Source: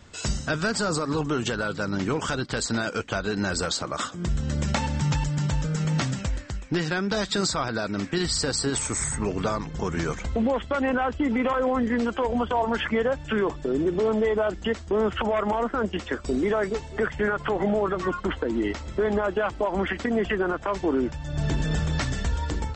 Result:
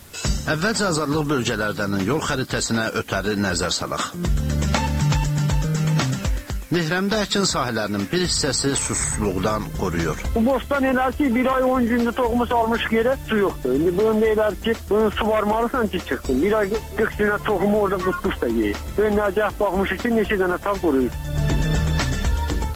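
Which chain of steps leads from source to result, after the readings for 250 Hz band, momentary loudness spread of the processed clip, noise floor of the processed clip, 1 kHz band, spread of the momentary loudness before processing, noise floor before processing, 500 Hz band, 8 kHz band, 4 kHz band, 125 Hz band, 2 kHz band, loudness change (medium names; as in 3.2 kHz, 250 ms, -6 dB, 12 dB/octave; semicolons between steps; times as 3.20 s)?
+5.0 dB, 5 LU, -34 dBFS, +5.0 dB, 5 LU, -39 dBFS, +5.0 dB, +5.0 dB, +5.0 dB, +5.0 dB, +5.0 dB, +5.0 dB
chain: added noise blue -51 dBFS; trim +5 dB; AAC 64 kbps 32 kHz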